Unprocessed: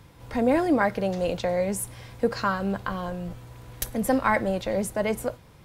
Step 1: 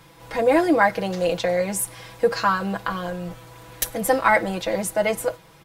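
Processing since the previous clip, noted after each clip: low shelf 280 Hz -10.5 dB; comb 6.1 ms, depth 79%; gain +4.5 dB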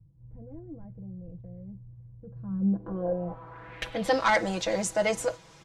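soft clip -11.5 dBFS, distortion -16 dB; low-pass sweep 100 Hz -> 6700 Hz, 2.28–4.29; gain -3.5 dB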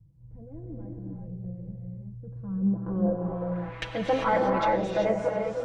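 treble ducked by the level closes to 1100 Hz, closed at -23.5 dBFS; non-linear reverb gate 0.42 s rising, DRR 0 dB

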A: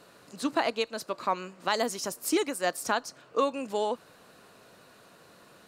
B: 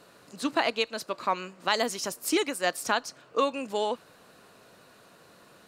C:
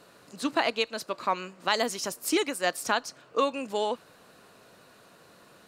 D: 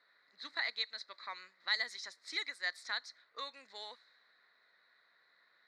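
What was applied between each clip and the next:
dynamic EQ 2800 Hz, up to +5 dB, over -43 dBFS, Q 0.81
nothing audible
low-pass opened by the level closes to 2500 Hz, open at -24 dBFS; double band-pass 2800 Hz, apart 1 oct

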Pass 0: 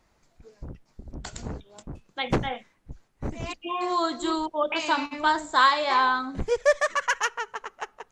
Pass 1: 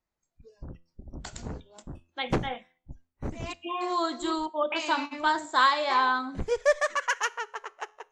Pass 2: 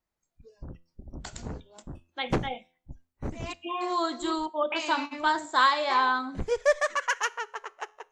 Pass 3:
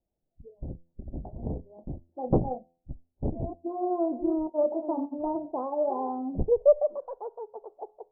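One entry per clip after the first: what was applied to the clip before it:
spectral noise reduction 19 dB; resonator 85 Hz, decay 0.47 s, harmonics all, mix 30%
spectral gain 2.48–2.73, 940–2100 Hz -16 dB
steep low-pass 760 Hz 48 dB/oct; Doppler distortion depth 0.28 ms; gain +4.5 dB

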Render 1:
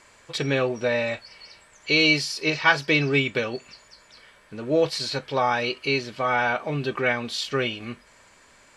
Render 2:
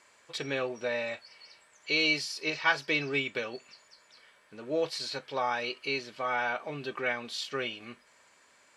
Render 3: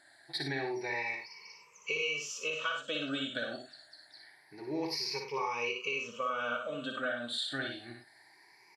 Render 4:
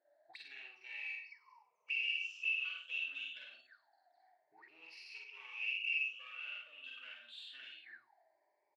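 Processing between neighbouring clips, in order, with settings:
HPF 340 Hz 6 dB/oct; gain -7 dB
moving spectral ripple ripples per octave 0.8, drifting +0.26 Hz, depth 22 dB; compressor 10:1, threshold -26 dBFS, peak gain reduction 11.5 dB; on a send: tapped delay 59/99 ms -5/-9.5 dB; on the sum: gain -5.5 dB
one-sided clip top -38 dBFS; doubler 47 ms -2.5 dB; auto-wah 490–2700 Hz, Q 18, up, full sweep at -37.5 dBFS; gain +6 dB

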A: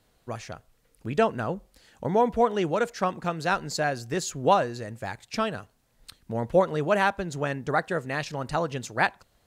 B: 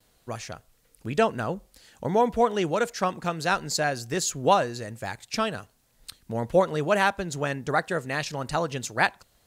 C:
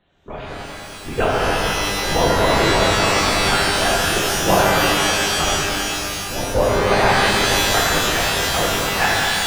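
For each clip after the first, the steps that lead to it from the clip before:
gate with hold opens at -59 dBFS; high shelf 3500 Hz +7 dB
LPC vocoder at 8 kHz whisper; shimmer reverb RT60 2.8 s, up +12 st, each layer -2 dB, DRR -5 dB

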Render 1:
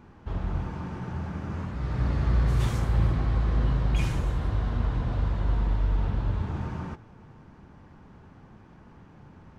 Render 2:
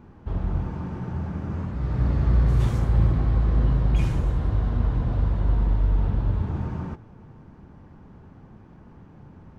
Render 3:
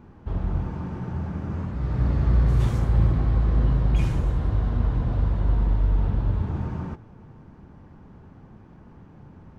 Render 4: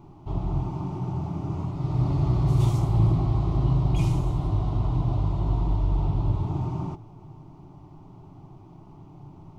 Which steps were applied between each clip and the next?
tilt shelf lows +4 dB, about 930 Hz
nothing audible
fixed phaser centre 330 Hz, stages 8; gain +4 dB

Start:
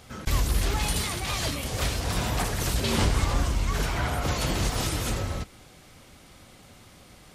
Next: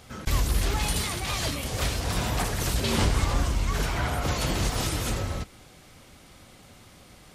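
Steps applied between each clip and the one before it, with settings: nothing audible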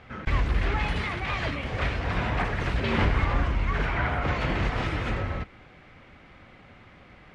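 synth low-pass 2100 Hz, resonance Q 1.7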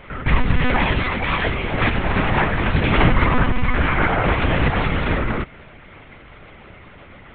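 monotone LPC vocoder at 8 kHz 250 Hz; gain +8.5 dB

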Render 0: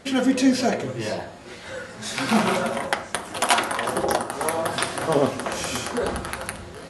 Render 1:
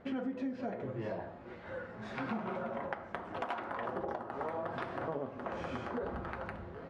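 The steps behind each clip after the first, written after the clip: LPF 1500 Hz 12 dB/oct; compressor 10:1, threshold -27 dBFS, peak gain reduction 14.5 dB; gain -7 dB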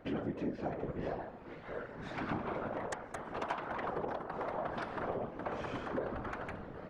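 added harmonics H 4 -10 dB, 6 -13 dB, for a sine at -18 dBFS; whisperiser

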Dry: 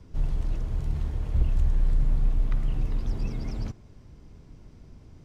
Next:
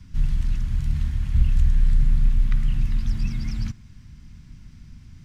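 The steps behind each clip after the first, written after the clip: EQ curve 220 Hz 0 dB, 460 Hz -23 dB, 1700 Hz +2 dB; gain +5 dB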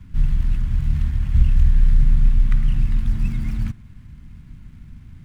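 median filter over 9 samples; gain +3.5 dB

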